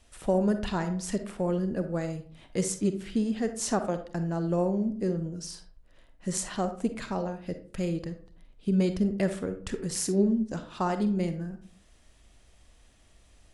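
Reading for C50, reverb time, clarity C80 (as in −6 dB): 9.5 dB, 0.45 s, 14.5 dB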